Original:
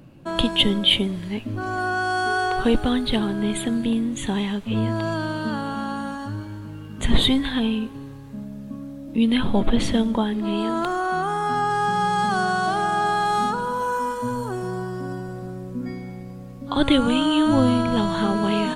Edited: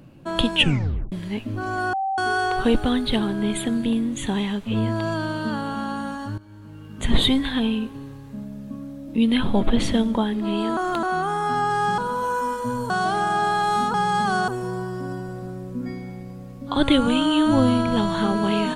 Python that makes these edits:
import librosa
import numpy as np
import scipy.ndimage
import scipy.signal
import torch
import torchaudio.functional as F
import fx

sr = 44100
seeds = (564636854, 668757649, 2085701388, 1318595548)

y = fx.edit(x, sr, fx.tape_stop(start_s=0.56, length_s=0.56),
    fx.bleep(start_s=1.93, length_s=0.25, hz=774.0, db=-21.5),
    fx.fade_in_from(start_s=6.38, length_s=1.07, curve='qsin', floor_db=-17.0),
    fx.reverse_span(start_s=10.77, length_s=0.26),
    fx.swap(start_s=11.98, length_s=0.54, other_s=13.56, other_length_s=0.92), tone=tone)